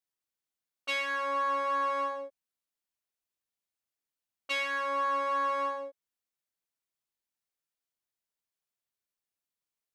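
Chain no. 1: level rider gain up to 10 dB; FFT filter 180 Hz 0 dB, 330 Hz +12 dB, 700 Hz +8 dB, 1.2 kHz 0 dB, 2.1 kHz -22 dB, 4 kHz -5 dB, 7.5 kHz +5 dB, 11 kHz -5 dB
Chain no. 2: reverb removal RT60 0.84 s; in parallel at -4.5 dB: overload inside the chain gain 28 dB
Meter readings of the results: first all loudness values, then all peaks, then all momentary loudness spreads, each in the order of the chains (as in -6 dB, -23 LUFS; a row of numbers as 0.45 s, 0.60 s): -18.5 LUFS, -29.5 LUFS; -7.5 dBFS, -17.0 dBFS; 11 LU, 15 LU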